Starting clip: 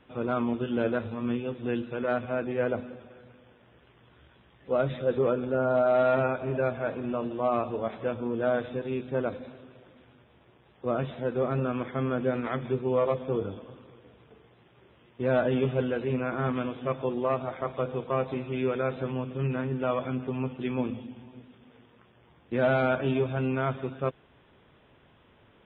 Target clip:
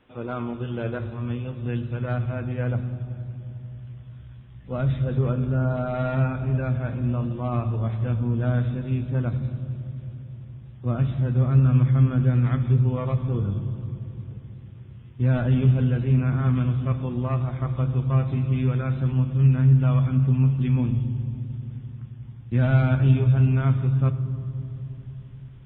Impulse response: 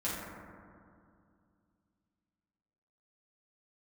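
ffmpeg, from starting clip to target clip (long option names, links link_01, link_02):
-filter_complex "[0:a]asplit=2[link_01][link_02];[link_02]equalizer=frequency=700:width_type=o:width=1.7:gain=-9.5[link_03];[1:a]atrim=start_sample=2205,asetrate=26901,aresample=44100[link_04];[link_03][link_04]afir=irnorm=-1:irlink=0,volume=-12.5dB[link_05];[link_01][link_05]amix=inputs=2:normalize=0,asubboost=boost=11.5:cutoff=130,volume=-3dB"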